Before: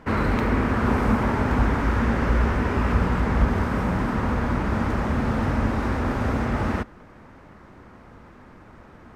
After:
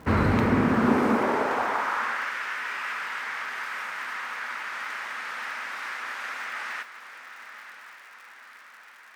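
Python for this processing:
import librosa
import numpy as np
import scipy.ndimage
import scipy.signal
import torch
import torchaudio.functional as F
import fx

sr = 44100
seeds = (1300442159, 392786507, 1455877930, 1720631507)

y = fx.dmg_crackle(x, sr, seeds[0], per_s=140.0, level_db=-42.0)
y = fx.echo_diffused(y, sr, ms=981, feedback_pct=56, wet_db=-11.5)
y = fx.filter_sweep_highpass(y, sr, from_hz=61.0, to_hz=1800.0, start_s=0.02, end_s=2.34, q=1.3)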